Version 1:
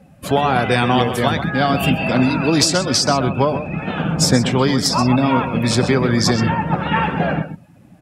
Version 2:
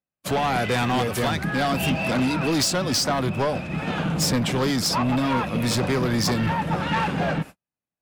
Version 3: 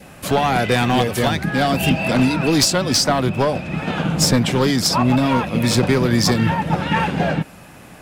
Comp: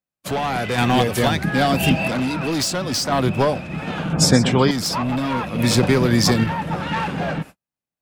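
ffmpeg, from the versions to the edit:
-filter_complex "[2:a]asplit=3[s0][s1][s2];[1:a]asplit=5[s3][s4][s5][s6][s7];[s3]atrim=end=0.782[s8];[s0]atrim=start=0.778:end=2.082[s9];[s4]atrim=start=2.078:end=3.122[s10];[s1]atrim=start=3.118:end=3.542[s11];[s5]atrim=start=3.538:end=4.132[s12];[0:a]atrim=start=4.128:end=4.712[s13];[s6]atrim=start=4.708:end=5.592[s14];[s2]atrim=start=5.588:end=6.442[s15];[s7]atrim=start=6.438[s16];[s8][s9]acrossfade=d=0.004:c1=hsin:c2=hsin[s17];[s17][s10]acrossfade=d=0.004:c1=hsin:c2=hsin[s18];[s18][s11]acrossfade=d=0.004:c1=hsin:c2=hsin[s19];[s19][s12]acrossfade=d=0.004:c1=hsin:c2=hsin[s20];[s20][s13]acrossfade=d=0.004:c1=hsin:c2=hsin[s21];[s21][s14]acrossfade=d=0.004:c1=hsin:c2=hsin[s22];[s22][s15]acrossfade=d=0.004:c1=hsin:c2=hsin[s23];[s23][s16]acrossfade=d=0.004:c1=hsin:c2=hsin"

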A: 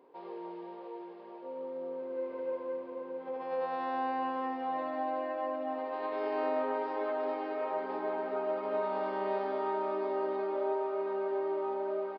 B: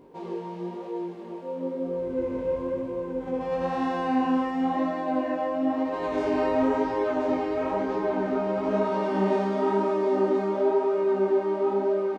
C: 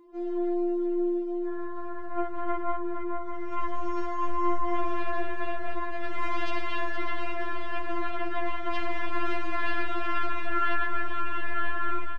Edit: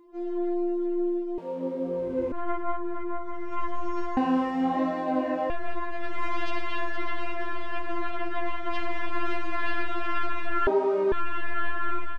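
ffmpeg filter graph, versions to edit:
-filter_complex "[1:a]asplit=3[s0][s1][s2];[2:a]asplit=4[s3][s4][s5][s6];[s3]atrim=end=1.382[s7];[s0]atrim=start=1.378:end=2.322[s8];[s4]atrim=start=2.318:end=4.172[s9];[s1]atrim=start=4.168:end=5.502[s10];[s5]atrim=start=5.498:end=10.672[s11];[s2]atrim=start=10.668:end=11.122[s12];[s6]atrim=start=11.118[s13];[s7][s8]acrossfade=d=0.004:c1=hsin:c2=hsin[s14];[s14][s9]acrossfade=d=0.004:c1=hsin:c2=hsin[s15];[s15][s10]acrossfade=d=0.004:c1=hsin:c2=hsin[s16];[s16][s11]acrossfade=d=0.004:c1=hsin:c2=hsin[s17];[s17][s12]acrossfade=d=0.004:c1=hsin:c2=hsin[s18];[s18][s13]acrossfade=d=0.004:c1=hsin:c2=hsin"

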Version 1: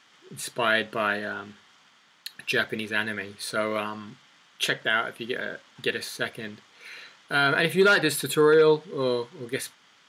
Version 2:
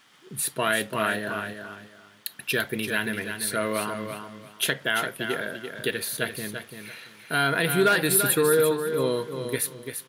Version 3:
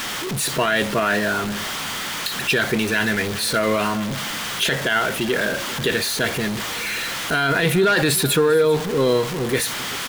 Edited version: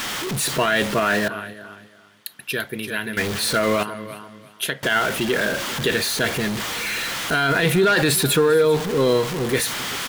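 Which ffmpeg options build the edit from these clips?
-filter_complex "[1:a]asplit=2[s0][s1];[2:a]asplit=3[s2][s3][s4];[s2]atrim=end=1.282[s5];[s0]atrim=start=1.278:end=3.172[s6];[s3]atrim=start=3.168:end=3.832[s7];[s1]atrim=start=3.828:end=4.832[s8];[s4]atrim=start=4.828[s9];[s5][s6]acrossfade=d=0.004:c1=hsin:c2=hsin[s10];[s10][s7]acrossfade=d=0.004:c1=hsin:c2=hsin[s11];[s11][s8]acrossfade=d=0.004:c1=hsin:c2=hsin[s12];[s12][s9]acrossfade=d=0.004:c1=hsin:c2=hsin"

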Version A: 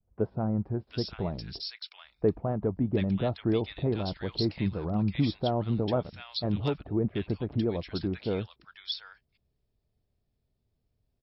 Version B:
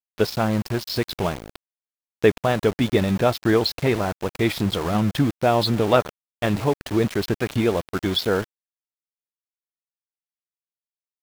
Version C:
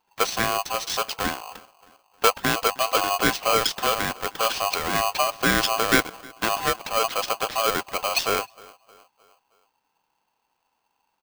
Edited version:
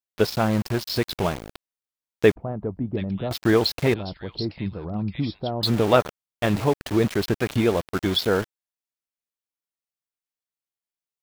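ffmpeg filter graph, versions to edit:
-filter_complex "[0:a]asplit=2[s0][s1];[1:a]asplit=3[s2][s3][s4];[s2]atrim=end=2.362[s5];[s0]atrim=start=2.358:end=3.312[s6];[s3]atrim=start=3.308:end=3.942[s7];[s1]atrim=start=3.938:end=5.632[s8];[s4]atrim=start=5.628[s9];[s5][s6]acrossfade=d=0.004:c1=hsin:c2=hsin[s10];[s10][s7]acrossfade=d=0.004:c1=hsin:c2=hsin[s11];[s11][s8]acrossfade=d=0.004:c1=hsin:c2=hsin[s12];[s12][s9]acrossfade=d=0.004:c1=hsin:c2=hsin"

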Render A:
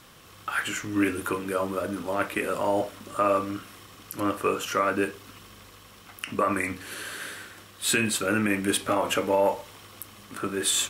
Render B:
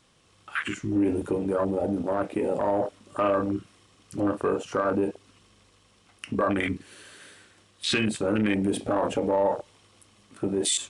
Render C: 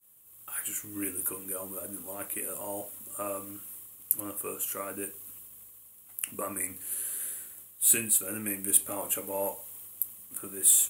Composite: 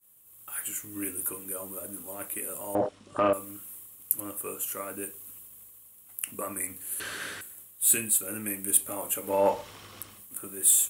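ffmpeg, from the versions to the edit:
-filter_complex "[0:a]asplit=2[s0][s1];[2:a]asplit=4[s2][s3][s4][s5];[s2]atrim=end=2.752[s6];[1:a]atrim=start=2.748:end=3.332[s7];[s3]atrim=start=3.328:end=7.002[s8];[s0]atrim=start=6.998:end=7.412[s9];[s4]atrim=start=7.408:end=9.47[s10];[s1]atrim=start=9.23:end=10.25[s11];[s5]atrim=start=10.01[s12];[s6][s7]acrossfade=d=0.004:c1=hsin:c2=hsin[s13];[s13][s8]acrossfade=d=0.004:c1=hsin:c2=hsin[s14];[s14][s9]acrossfade=d=0.004:c1=hsin:c2=hsin[s15];[s15][s10]acrossfade=d=0.004:c1=hsin:c2=hsin[s16];[s16][s11]acrossfade=d=0.24:c1=tri:c2=tri[s17];[s17][s12]acrossfade=d=0.24:c1=tri:c2=tri"

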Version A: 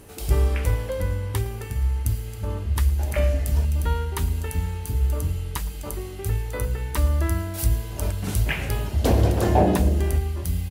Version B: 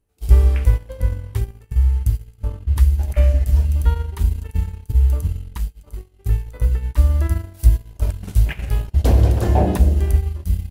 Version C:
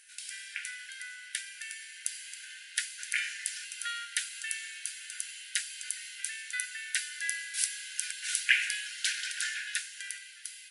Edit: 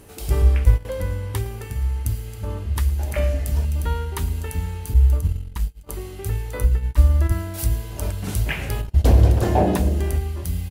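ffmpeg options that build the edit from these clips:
-filter_complex "[1:a]asplit=4[s0][s1][s2][s3];[0:a]asplit=5[s4][s5][s6][s7][s8];[s4]atrim=end=0.422[s9];[s0]atrim=start=0.418:end=0.852[s10];[s5]atrim=start=0.848:end=4.942[s11];[s1]atrim=start=4.938:end=5.892[s12];[s6]atrim=start=5.888:end=6.642[s13];[s2]atrim=start=6.638:end=7.322[s14];[s7]atrim=start=7.318:end=8.812[s15];[s3]atrim=start=8.808:end=9.432[s16];[s8]atrim=start=9.428[s17];[s9][s10]acrossfade=d=0.004:c1=hsin:c2=hsin[s18];[s18][s11]acrossfade=d=0.004:c1=hsin:c2=hsin[s19];[s19][s12]acrossfade=d=0.004:c1=hsin:c2=hsin[s20];[s20][s13]acrossfade=d=0.004:c1=hsin:c2=hsin[s21];[s21][s14]acrossfade=d=0.004:c1=hsin:c2=hsin[s22];[s22][s15]acrossfade=d=0.004:c1=hsin:c2=hsin[s23];[s23][s16]acrossfade=d=0.004:c1=hsin:c2=hsin[s24];[s24][s17]acrossfade=d=0.004:c1=hsin:c2=hsin"

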